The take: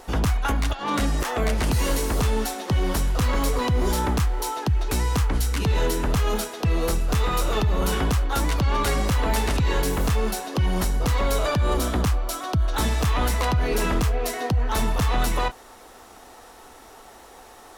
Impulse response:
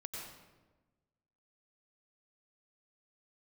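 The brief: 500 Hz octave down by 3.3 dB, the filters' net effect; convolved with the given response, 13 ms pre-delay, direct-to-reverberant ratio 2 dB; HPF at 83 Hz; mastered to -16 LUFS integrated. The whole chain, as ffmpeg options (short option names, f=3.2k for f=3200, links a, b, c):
-filter_complex "[0:a]highpass=83,equalizer=f=500:t=o:g=-4,asplit=2[a][b];[1:a]atrim=start_sample=2205,adelay=13[c];[b][c]afir=irnorm=-1:irlink=0,volume=-0.5dB[d];[a][d]amix=inputs=2:normalize=0,volume=8.5dB"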